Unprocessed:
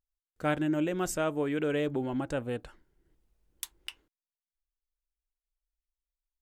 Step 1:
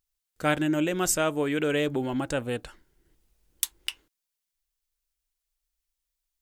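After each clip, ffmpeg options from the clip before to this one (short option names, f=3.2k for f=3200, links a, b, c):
-af "highshelf=f=2.2k:g=9,volume=3dB"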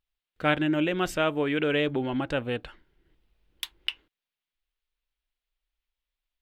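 -af "highshelf=f=4.8k:t=q:w=1.5:g=-14"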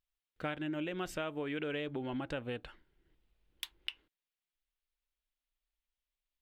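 -af "acompressor=threshold=-29dB:ratio=4,volume=-6dB"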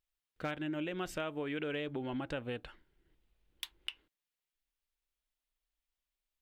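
-af "asoftclip=type=hard:threshold=-25dB"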